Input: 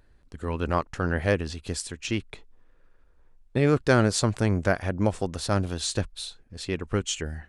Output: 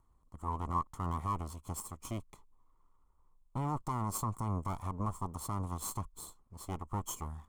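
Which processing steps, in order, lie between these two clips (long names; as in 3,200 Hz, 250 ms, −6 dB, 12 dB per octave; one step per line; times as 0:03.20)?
lower of the sound and its delayed copy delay 0.94 ms
brickwall limiter −17 dBFS, peak gain reduction 11 dB
drawn EQ curve 740 Hz 0 dB, 1,100 Hz +11 dB, 1,600 Hz −12 dB, 5,000 Hz −10 dB, 7,200 Hz +4 dB
level −9 dB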